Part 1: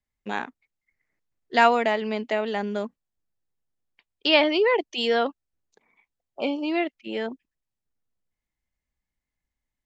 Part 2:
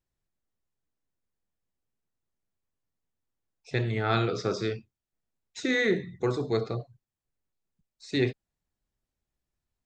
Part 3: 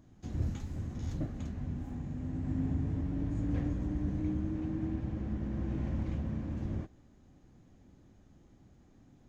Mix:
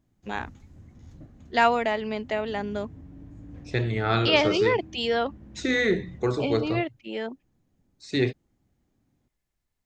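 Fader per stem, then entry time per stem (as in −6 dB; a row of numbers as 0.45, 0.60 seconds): −2.5, +2.0, −11.0 decibels; 0.00, 0.00, 0.00 seconds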